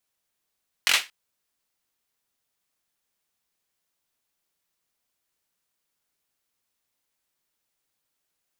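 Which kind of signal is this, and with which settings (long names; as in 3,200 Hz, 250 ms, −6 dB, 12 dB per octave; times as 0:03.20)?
synth clap length 0.23 s, bursts 4, apart 22 ms, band 2,500 Hz, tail 0.23 s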